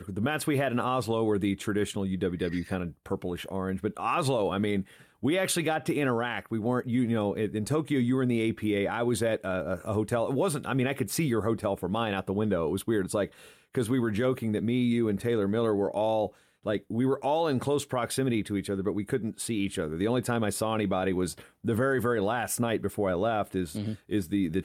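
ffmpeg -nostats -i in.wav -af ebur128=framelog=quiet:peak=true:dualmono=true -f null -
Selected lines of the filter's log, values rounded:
Integrated loudness:
  I:         -25.9 LUFS
  Threshold: -35.9 LUFS
Loudness range:
  LRA:         1.9 LU
  Threshold: -45.9 LUFS
  LRA low:   -27.0 LUFS
  LRA high:  -25.1 LUFS
True peak:
  Peak:      -16.0 dBFS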